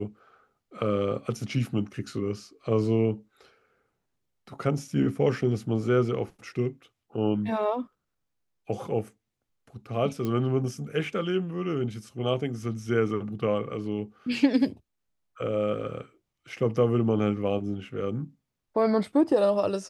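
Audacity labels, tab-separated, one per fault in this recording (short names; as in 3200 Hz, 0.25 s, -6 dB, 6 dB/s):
10.250000	10.250000	pop -18 dBFS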